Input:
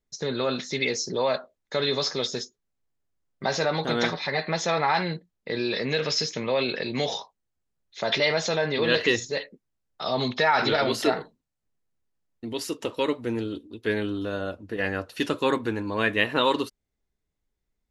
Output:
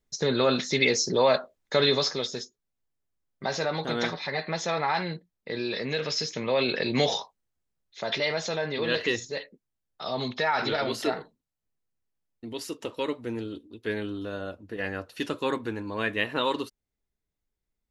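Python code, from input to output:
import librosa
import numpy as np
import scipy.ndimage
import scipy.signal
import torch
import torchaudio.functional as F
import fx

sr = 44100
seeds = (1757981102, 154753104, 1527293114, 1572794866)

y = fx.gain(x, sr, db=fx.line((1.86, 3.5), (2.27, -3.5), (6.18, -3.5), (6.98, 3.5), (8.06, -4.5)))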